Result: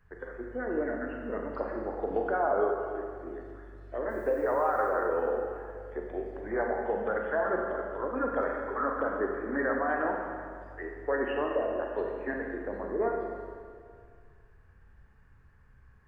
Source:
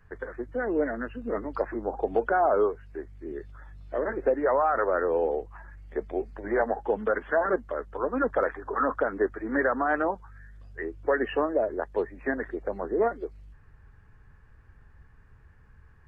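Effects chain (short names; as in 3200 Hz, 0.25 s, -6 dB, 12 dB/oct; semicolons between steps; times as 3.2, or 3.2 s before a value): 4.09–4.88 added noise blue -62 dBFS; Schroeder reverb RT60 2.1 s, combs from 32 ms, DRR 0.5 dB; gain -6 dB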